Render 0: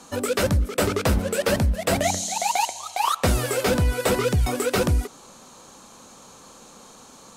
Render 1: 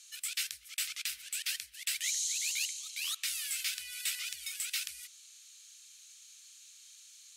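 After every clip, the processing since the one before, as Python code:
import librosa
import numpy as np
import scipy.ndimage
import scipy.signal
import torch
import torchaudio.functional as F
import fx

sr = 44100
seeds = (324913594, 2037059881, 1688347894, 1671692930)

y = scipy.signal.sosfilt(scipy.signal.cheby2(4, 50, 890.0, 'highpass', fs=sr, output='sos'), x)
y = F.gain(torch.from_numpy(y), -4.5).numpy()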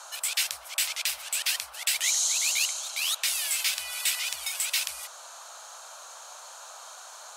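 y = fx.dmg_noise_band(x, sr, seeds[0], low_hz=580.0, high_hz=1500.0, level_db=-57.0)
y = F.gain(torch.from_numpy(y), 8.0).numpy()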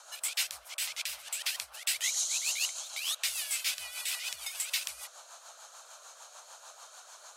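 y = fx.rotary(x, sr, hz=6.7)
y = F.gain(torch.from_numpy(y), -3.5).numpy()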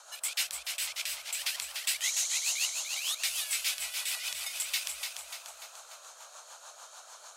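y = fx.echo_feedback(x, sr, ms=294, feedback_pct=49, wet_db=-6)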